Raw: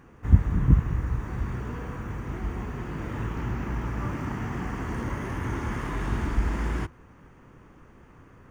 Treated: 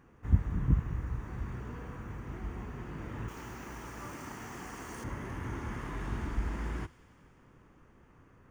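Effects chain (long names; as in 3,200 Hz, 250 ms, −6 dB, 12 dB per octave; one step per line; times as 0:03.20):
0:03.28–0:05.04: bass and treble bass −10 dB, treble +13 dB
delay with a high-pass on its return 92 ms, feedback 81%, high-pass 2,600 Hz, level −17 dB
level −8 dB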